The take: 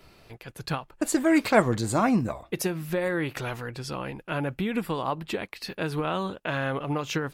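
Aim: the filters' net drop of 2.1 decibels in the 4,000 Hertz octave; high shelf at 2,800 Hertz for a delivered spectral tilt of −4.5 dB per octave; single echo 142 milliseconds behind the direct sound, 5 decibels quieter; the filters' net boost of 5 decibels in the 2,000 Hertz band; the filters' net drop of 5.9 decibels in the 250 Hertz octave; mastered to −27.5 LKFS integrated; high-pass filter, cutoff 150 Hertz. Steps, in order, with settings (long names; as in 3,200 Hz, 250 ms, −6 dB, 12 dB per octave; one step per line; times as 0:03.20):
high-pass filter 150 Hz
parametric band 250 Hz −7.5 dB
parametric band 2,000 Hz +8.5 dB
high-shelf EQ 2,800 Hz −3 dB
parametric band 4,000 Hz −3.5 dB
single-tap delay 142 ms −5 dB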